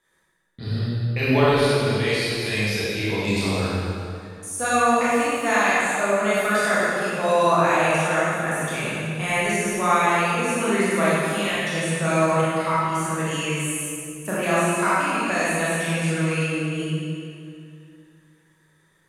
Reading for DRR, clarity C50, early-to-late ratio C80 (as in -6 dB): -9.5 dB, -5.0 dB, -2.5 dB